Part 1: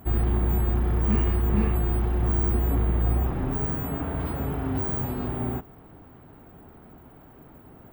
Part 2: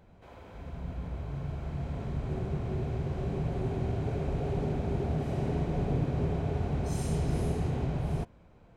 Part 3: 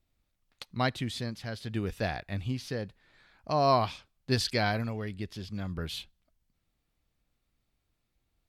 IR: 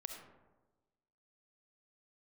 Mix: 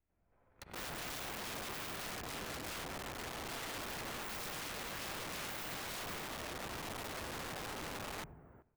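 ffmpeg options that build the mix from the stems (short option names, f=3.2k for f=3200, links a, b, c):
-filter_complex "[0:a]highpass=43,aphaser=in_gain=1:out_gain=1:delay=3.2:decay=0.28:speed=0.42:type=sinusoidal,adelay=700,volume=-11.5dB,asplit=3[a][b][c];[a]atrim=end=2.15,asetpts=PTS-STARTPTS,afade=t=out:st=2.146:d=0.004:c=hsin[d];[b]atrim=start=2.15:end=3.83,asetpts=PTS-STARTPTS,volume=0[e];[c]atrim=start=3.83,asetpts=PTS-STARTPTS,afade=t=in:d=0.004:c=hsin[f];[d][e][f]concat=n=3:v=0:a=1,asplit=3[g][h][i];[h]volume=-21.5dB[j];[i]volume=-20.5dB[k];[1:a]volume=-9.5dB,asplit=3[l][m][n];[m]volume=-22.5dB[o];[n]volume=-14.5dB[p];[2:a]acompressor=threshold=-35dB:ratio=10,volume=2.5dB,asplit=3[q][r][s];[r]volume=-8.5dB[t];[s]volume=-15.5dB[u];[l][q]amix=inputs=2:normalize=0,acrusher=bits=6:mix=0:aa=0.5,alimiter=level_in=4.5dB:limit=-24dB:level=0:latency=1:release=20,volume=-4.5dB,volume=0dB[v];[3:a]atrim=start_sample=2205[w];[j][o][t]amix=inputs=3:normalize=0[x];[x][w]afir=irnorm=-1:irlink=0[y];[k][p][u]amix=inputs=3:normalize=0,aecho=0:1:97|194|291|388|485:1|0.39|0.152|0.0593|0.0231[z];[g][v][y][z]amix=inputs=4:normalize=0,highshelf=f=2.8k:t=q:w=1.5:g=-13.5,acrossover=split=380|3000[aa][ab][ac];[ab]acompressor=threshold=-41dB:ratio=6[ad];[aa][ad][ac]amix=inputs=3:normalize=0,aeval=exprs='(mod(84.1*val(0)+1,2)-1)/84.1':c=same"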